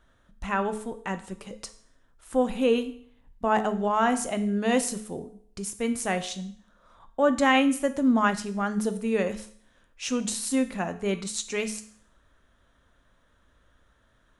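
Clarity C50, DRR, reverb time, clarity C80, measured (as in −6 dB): 13.5 dB, 9.0 dB, 0.55 s, 17.0 dB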